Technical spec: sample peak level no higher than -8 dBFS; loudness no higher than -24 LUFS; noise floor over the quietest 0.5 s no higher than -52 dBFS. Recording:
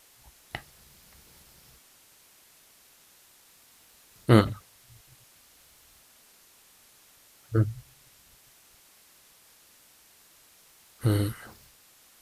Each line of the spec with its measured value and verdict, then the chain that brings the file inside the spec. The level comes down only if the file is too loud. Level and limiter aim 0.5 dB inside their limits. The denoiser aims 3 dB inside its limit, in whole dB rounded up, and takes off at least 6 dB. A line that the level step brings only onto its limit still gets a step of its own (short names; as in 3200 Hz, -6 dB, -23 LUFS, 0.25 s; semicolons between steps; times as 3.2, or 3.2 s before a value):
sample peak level -5.0 dBFS: fail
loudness -27.0 LUFS: OK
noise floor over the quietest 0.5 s -58 dBFS: OK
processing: limiter -8.5 dBFS